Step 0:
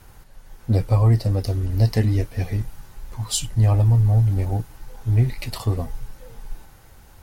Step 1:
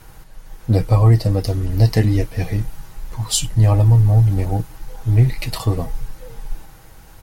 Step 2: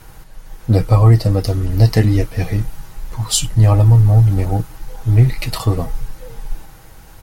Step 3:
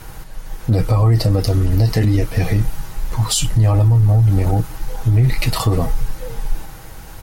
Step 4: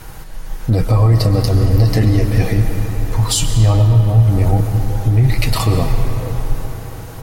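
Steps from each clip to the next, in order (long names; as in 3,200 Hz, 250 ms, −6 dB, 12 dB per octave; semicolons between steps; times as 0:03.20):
comb filter 6.3 ms, depth 35%; level +4.5 dB
dynamic equaliser 1,300 Hz, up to +5 dB, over −53 dBFS, Q 6.4; level +2.5 dB
brickwall limiter −13 dBFS, peak gain reduction 11.5 dB; level +5.5 dB
convolution reverb RT60 4.8 s, pre-delay 95 ms, DRR 5.5 dB; level +1 dB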